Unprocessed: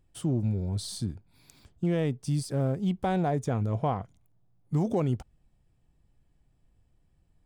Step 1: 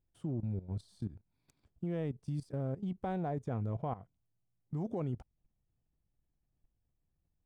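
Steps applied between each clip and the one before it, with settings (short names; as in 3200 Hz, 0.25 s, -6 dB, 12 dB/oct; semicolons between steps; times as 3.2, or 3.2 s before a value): high shelf 2800 Hz -11.5 dB; level quantiser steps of 15 dB; gain -5 dB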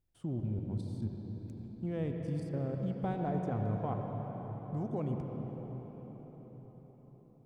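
reverb RT60 5.5 s, pre-delay 73 ms, DRR 2 dB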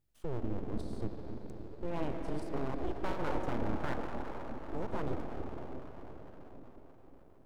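full-wave rectifier; gain +2.5 dB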